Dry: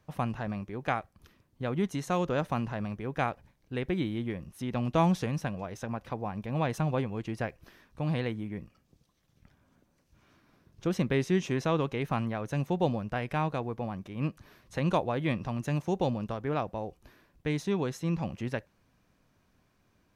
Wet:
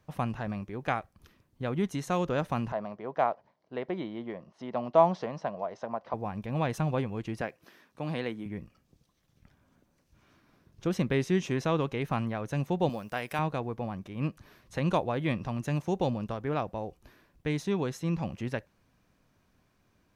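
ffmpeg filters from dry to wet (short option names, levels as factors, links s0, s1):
-filter_complex "[0:a]asettb=1/sr,asplit=3[s0][s1][s2];[s0]atrim=end=2.724[s3];[s1]atrim=start=2.72:end=6.14,asetpts=PTS-STARTPTS,afade=t=in:d=0.004:c=qsin,afade=t=out:st=3.416:d=0.004:c=qsin,highpass=260,equalizer=f=290:t=q:w=4:g=-5,equalizer=f=650:t=q:w=4:g=9,equalizer=f=990:t=q:w=4:g=5,equalizer=f=1600:t=q:w=4:g=-5,equalizer=f=2500:t=q:w=4:g=-9,equalizer=f=3600:t=q:w=4:g=-7,lowpass=f=4700:w=0.5412,lowpass=f=4700:w=1.3066[s4];[s2]atrim=start=6.136[s5];[s3][s4]acrossfade=d=0.004:c1=hsin:c2=qsin[s6];[s6][s5]acrossfade=d=0.004:c1=qsin:c2=hsin,asettb=1/sr,asplit=3[s7][s8][s9];[s7]atrim=end=7.414[s10];[s8]atrim=start=7.41:end=8.46,asetpts=PTS-STARTPTS,afade=t=in:d=0.004:c=qsin,afade=t=out:st=1.046:d=0.004:c=qsin,highpass=200[s11];[s9]atrim=start=8.456[s12];[s10][s11]acrossfade=d=0.004:c1=hsin:c2=qsin[s13];[s13][s12]acrossfade=d=0.004:c1=qsin:c2=hsin,asettb=1/sr,asplit=3[s14][s15][s16];[s14]atrim=end=12.894[s17];[s15]atrim=start=12.89:end=13.39,asetpts=PTS-STARTPTS,afade=t=in:d=0.004:c=qsin,afade=t=out:st=0.496:d=0.004:c=qsin,aemphasis=mode=production:type=bsi[s18];[s16]atrim=start=13.386[s19];[s17][s18]acrossfade=d=0.004:c1=hsin:c2=qsin[s20];[s20][s19]acrossfade=d=0.004:c1=qsin:c2=hsin"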